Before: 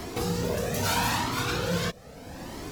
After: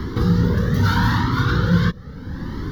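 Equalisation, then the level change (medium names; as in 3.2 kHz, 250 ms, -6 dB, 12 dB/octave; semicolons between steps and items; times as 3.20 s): tone controls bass +7 dB, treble -14 dB; static phaser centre 2.5 kHz, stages 6; +9.0 dB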